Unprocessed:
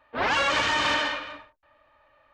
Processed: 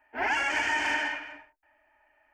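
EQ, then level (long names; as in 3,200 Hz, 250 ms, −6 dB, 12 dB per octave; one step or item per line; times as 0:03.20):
low-shelf EQ 310 Hz −8 dB
phaser with its sweep stopped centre 780 Hz, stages 8
0.0 dB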